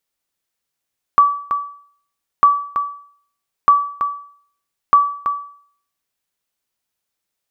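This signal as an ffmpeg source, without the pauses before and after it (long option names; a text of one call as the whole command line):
ffmpeg -f lavfi -i "aevalsrc='0.668*(sin(2*PI*1150*mod(t,1.25))*exp(-6.91*mod(t,1.25)/0.55)+0.376*sin(2*PI*1150*max(mod(t,1.25)-0.33,0))*exp(-6.91*max(mod(t,1.25)-0.33,0)/0.55))':duration=5:sample_rate=44100" out.wav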